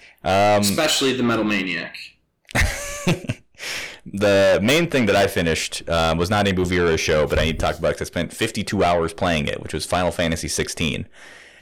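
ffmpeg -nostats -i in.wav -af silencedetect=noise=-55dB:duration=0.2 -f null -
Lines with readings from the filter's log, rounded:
silence_start: 2.20
silence_end: 2.45 | silence_duration: 0.26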